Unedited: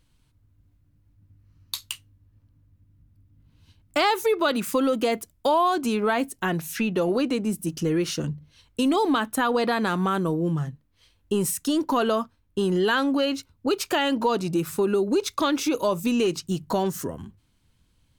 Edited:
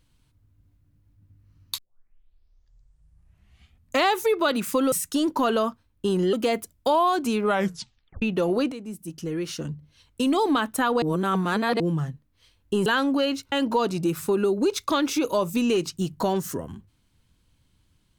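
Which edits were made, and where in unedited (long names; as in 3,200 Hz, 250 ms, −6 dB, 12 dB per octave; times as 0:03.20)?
0:01.78: tape start 2.43 s
0:06.04: tape stop 0.77 s
0:07.31–0:09.04: fade in, from −12 dB
0:09.61–0:10.39: reverse
0:11.45–0:12.86: move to 0:04.92
0:13.52–0:14.02: remove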